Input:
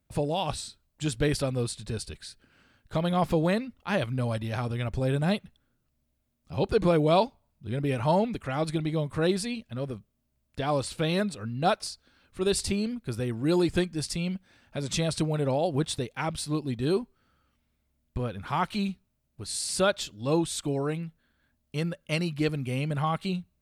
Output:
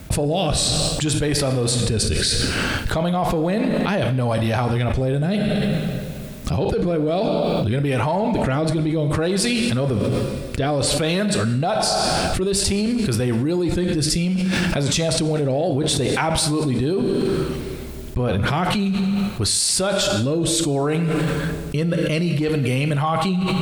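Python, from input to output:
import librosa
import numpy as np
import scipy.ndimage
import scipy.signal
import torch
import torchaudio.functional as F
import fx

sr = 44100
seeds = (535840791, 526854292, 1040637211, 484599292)

p1 = fx.rotary(x, sr, hz=0.6)
p2 = fx.rev_double_slope(p1, sr, seeds[0], early_s=0.88, late_s=2.3, knee_db=-19, drr_db=9.5)
p3 = 10.0 ** (-24.0 / 20.0) * np.tanh(p2 / 10.0 ** (-24.0 / 20.0))
p4 = p2 + (p3 * 10.0 ** (-4.5 / 20.0))
p5 = fx.dynamic_eq(p4, sr, hz=770.0, q=1.9, threshold_db=-41.0, ratio=4.0, max_db=4)
p6 = fx.env_flatten(p5, sr, amount_pct=100)
y = p6 * 10.0 ** (-3.5 / 20.0)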